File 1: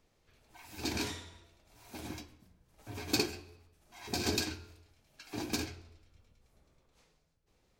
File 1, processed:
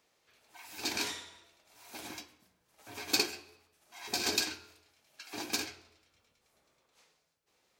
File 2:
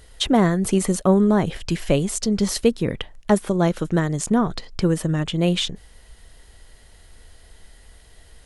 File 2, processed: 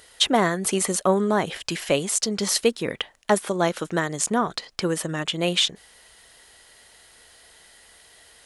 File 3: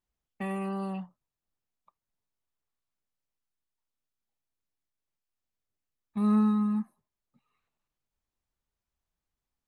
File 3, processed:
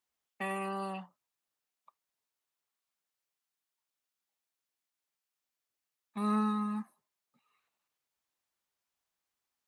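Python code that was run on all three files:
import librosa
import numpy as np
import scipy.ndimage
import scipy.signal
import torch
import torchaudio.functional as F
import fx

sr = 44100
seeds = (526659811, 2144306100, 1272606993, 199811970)

y = fx.highpass(x, sr, hz=780.0, slope=6)
y = y * 10.0 ** (4.0 / 20.0)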